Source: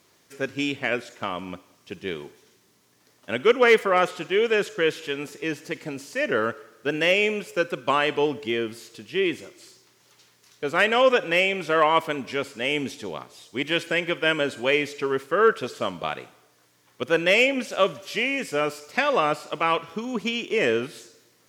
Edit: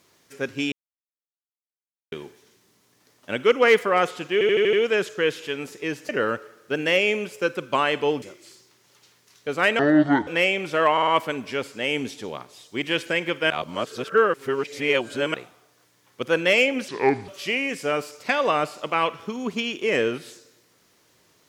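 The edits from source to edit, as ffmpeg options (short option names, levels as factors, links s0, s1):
-filter_complex "[0:a]asplit=19[s0][s1][s2][s3][s4][s5][s6][s7][s8][s9][s10][s11][s12][s13][s14][s15][s16][s17][s18];[s0]atrim=end=0.72,asetpts=PTS-STARTPTS,afade=t=out:st=0.716:d=0.004:c=hsin[s19];[s1]atrim=start=0.72:end=2.12,asetpts=PTS-STARTPTS,volume=0[s20];[s2]atrim=start=2.12:end=4.412,asetpts=PTS-STARTPTS,afade=t=in:d=0.004:c=hsin[s21];[s3]atrim=start=4.328:end=4.412[s22];[s4]atrim=start=4.328:end=4.412[s23];[s5]atrim=start=4.328:end=4.412[s24];[s6]atrim=start=4.328:end=4.412[s25];[s7]atrim=start=4.328:end=5.692[s26];[s8]atrim=start=6.238:end=8.372[s27];[s9]atrim=start=9.378:end=10.954[s28];[s10]atrim=start=10.95:end=11.23,asetpts=PTS-STARTPTS,asetrate=25578,aresample=44100[s29];[s11]atrim=start=11.226:end=11.932[s30];[s12]atrim=start=11.878:end=11.932[s31];[s13]atrim=start=11.878:end=11.932[s32];[s14]atrim=start=11.878:end=14.312[s33];[s15]atrim=start=14.308:end=16.152,asetpts=PTS-STARTPTS,areverse[s34];[s16]atrim=start=16.148:end=17.694[s35];[s17]atrim=start=17.69:end=17.97,asetpts=PTS-STARTPTS,asetrate=30870,aresample=44100[s36];[s18]atrim=start=17.966[s37];[s19][s20][s21]concat=n=3:v=0:a=1[s38];[s38][s22]acrossfade=d=0.004:c1=hsin:c2=hsin[s39];[s39][s23]acrossfade=d=0.004:c1=hsin:c2=hsin[s40];[s40][s24]acrossfade=d=0.004:c1=hsin:c2=hsin[s41];[s41][s25]acrossfade=d=0.004:c1=hsin:c2=hsin[s42];[s42][s26]acrossfade=d=0.004:c1=hsin:c2=hsin[s43];[s43][s27]acrossfade=d=0.004:c1=hsin:c2=hsin[s44];[s44][s28]acrossfade=d=0.004:c1=hsin:c2=hsin[s45];[s45][s29]acrossfade=d=0.004:c1=hsin:c2=hsin[s46];[s46][s30]acrossfade=d=0.004:c1=hsin:c2=hsin[s47];[s47][s31]acrossfade=d=0.004:c1=hsin:c2=hsin[s48];[s48][s32]acrossfade=d=0.004:c1=hsin:c2=hsin[s49];[s49][s33]acrossfade=d=0.004:c1=hsin:c2=hsin[s50];[s50][s34]acrossfade=d=0.004:c1=hsin:c2=hsin[s51];[s51][s35]acrossfade=d=0.004:c1=hsin:c2=hsin[s52];[s52][s36]acrossfade=d=0.004:c1=hsin:c2=hsin[s53];[s53][s37]acrossfade=d=0.004:c1=hsin:c2=hsin"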